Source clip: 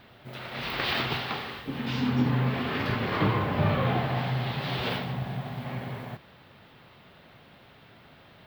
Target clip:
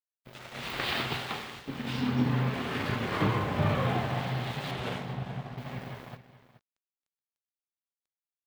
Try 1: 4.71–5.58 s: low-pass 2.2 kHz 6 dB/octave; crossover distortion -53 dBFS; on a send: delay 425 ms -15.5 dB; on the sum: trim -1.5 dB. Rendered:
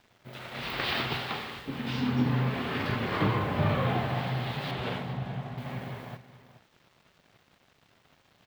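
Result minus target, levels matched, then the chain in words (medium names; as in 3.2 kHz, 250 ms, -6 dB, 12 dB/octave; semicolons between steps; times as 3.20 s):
crossover distortion: distortion -9 dB
4.71–5.58 s: low-pass 2.2 kHz 6 dB/octave; crossover distortion -42.5 dBFS; on a send: delay 425 ms -15.5 dB; on the sum: trim -1.5 dB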